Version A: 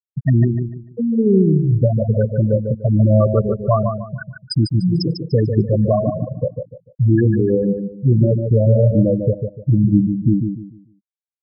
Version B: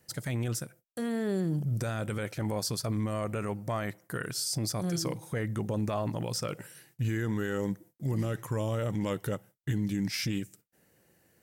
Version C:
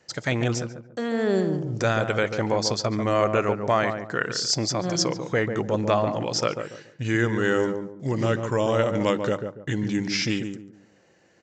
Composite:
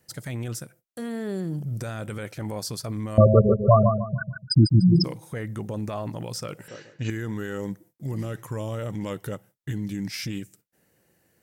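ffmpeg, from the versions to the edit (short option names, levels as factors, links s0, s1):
-filter_complex "[1:a]asplit=3[s0][s1][s2];[s0]atrim=end=3.182[s3];[0:a]atrim=start=3.178:end=5.042[s4];[s1]atrim=start=5.038:end=6.682[s5];[2:a]atrim=start=6.678:end=7.102[s6];[s2]atrim=start=7.098[s7];[s3][s4]acrossfade=d=0.004:c1=hsin:c2=hsin[s8];[s8][s5]acrossfade=d=0.004:c1=hsin:c2=hsin[s9];[s9][s6]acrossfade=d=0.004:c1=hsin:c2=hsin[s10];[s10][s7]acrossfade=d=0.004:c1=hsin:c2=hsin"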